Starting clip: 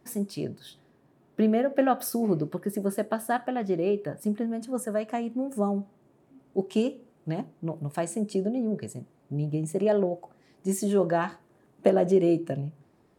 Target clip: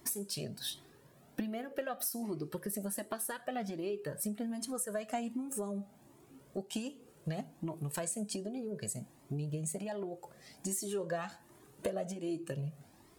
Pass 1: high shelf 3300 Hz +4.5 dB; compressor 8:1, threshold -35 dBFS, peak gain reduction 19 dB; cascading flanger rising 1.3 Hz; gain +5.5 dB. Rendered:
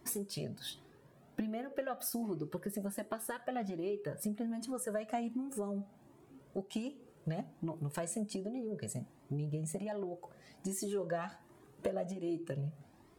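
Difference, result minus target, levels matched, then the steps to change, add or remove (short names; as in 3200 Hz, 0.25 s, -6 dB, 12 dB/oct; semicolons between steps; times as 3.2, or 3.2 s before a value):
8000 Hz band -4.0 dB
change: high shelf 3300 Hz +14.5 dB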